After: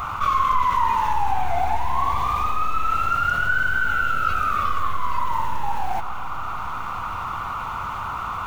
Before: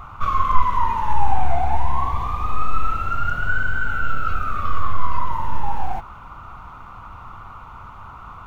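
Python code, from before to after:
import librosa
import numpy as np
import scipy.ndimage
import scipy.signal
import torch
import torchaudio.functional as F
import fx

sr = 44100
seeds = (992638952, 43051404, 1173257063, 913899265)

y = fx.tilt_eq(x, sr, slope=2.0)
y = fx.echo_filtered(y, sr, ms=141, feedback_pct=78, hz=2000.0, wet_db=-20)
y = fx.env_flatten(y, sr, amount_pct=50)
y = y * 10.0 ** (-2.0 / 20.0)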